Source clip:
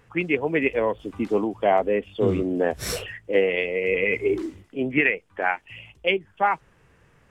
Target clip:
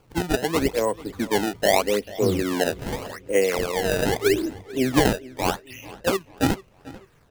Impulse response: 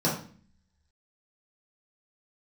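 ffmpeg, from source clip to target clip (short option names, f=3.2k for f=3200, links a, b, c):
-filter_complex "[0:a]asettb=1/sr,asplit=3[a][b][c];[a]atrim=end=4.244[d];[b]atrim=start=4.24:end=5.27,asetpts=PTS-STARTPTS,afade=t=in:d=0.004:c=qsin,afade=t=out:st=1.026:d=0.004:c=qsin,lowshelf=f=420:g=5.5[e];[c]atrim=start=5.266[f];[d][e]acrossfade=d=0.004:c1=hsin:c2=qsin[g];[g][f]acrossfade=d=0.004:c1=qsin:c2=hsin,acrusher=samples=23:mix=1:aa=0.000001:lfo=1:lforange=36.8:lforate=0.82,asplit=2[h][i];[i]adelay=441,lowpass=f=4.6k:p=1,volume=-19dB,asplit=2[j][k];[k]adelay=441,lowpass=f=4.6k:p=1,volume=0.4,asplit=2[l][m];[m]adelay=441,lowpass=f=4.6k:p=1,volume=0.4[n];[h][j][l][n]amix=inputs=4:normalize=0"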